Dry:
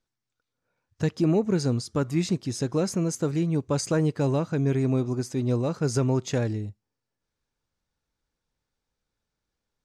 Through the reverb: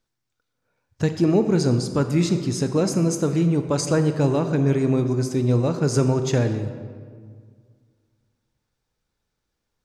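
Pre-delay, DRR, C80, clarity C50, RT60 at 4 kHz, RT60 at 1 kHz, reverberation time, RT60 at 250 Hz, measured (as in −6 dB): 23 ms, 7.5 dB, 10.0 dB, 8.5 dB, 1.1 s, 1.7 s, 1.9 s, 2.1 s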